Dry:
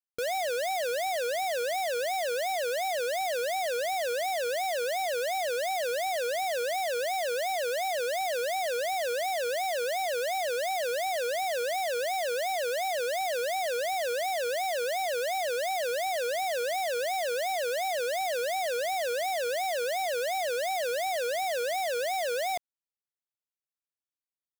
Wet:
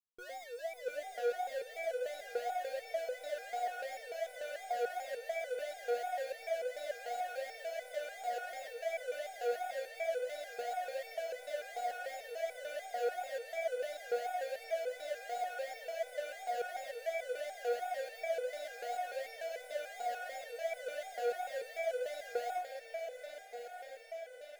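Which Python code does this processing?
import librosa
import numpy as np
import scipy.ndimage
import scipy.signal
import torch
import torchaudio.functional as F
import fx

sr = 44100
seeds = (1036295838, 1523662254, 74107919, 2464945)

y = fx.high_shelf(x, sr, hz=2000.0, db=-11.5)
y = fx.echo_diffused(y, sr, ms=765, feedback_pct=73, wet_db=-6)
y = fx.resonator_held(y, sr, hz=6.8, low_hz=240.0, high_hz=500.0)
y = y * librosa.db_to_amplitude(6.0)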